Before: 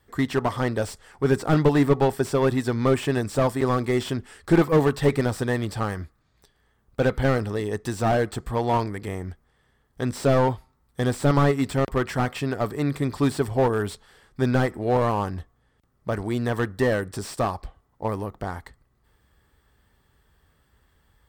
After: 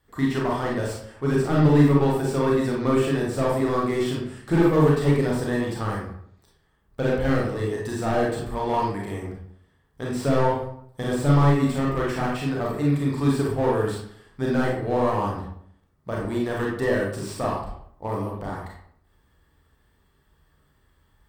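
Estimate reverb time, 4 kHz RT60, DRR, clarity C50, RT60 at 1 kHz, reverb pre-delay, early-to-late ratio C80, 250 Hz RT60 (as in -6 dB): 0.65 s, 0.40 s, -3.0 dB, 2.0 dB, 0.65 s, 28 ms, 6.0 dB, 0.70 s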